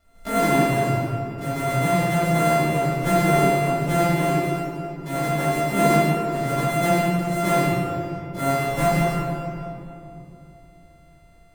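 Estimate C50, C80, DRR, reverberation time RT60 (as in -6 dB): -4.0 dB, -1.5 dB, -11.0 dB, 2.9 s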